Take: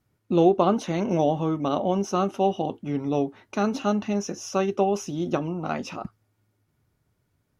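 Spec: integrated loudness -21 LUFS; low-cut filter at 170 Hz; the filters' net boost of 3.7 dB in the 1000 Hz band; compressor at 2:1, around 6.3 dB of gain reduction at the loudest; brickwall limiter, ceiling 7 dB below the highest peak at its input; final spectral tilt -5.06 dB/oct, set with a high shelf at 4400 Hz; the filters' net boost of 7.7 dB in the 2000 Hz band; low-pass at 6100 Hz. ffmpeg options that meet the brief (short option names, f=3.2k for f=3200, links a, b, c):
-af "highpass=170,lowpass=6.1k,equalizer=f=1k:t=o:g=3,equalizer=f=2k:t=o:g=9,highshelf=f=4.4k:g=4.5,acompressor=threshold=-24dB:ratio=2,volume=8.5dB,alimiter=limit=-8dB:level=0:latency=1"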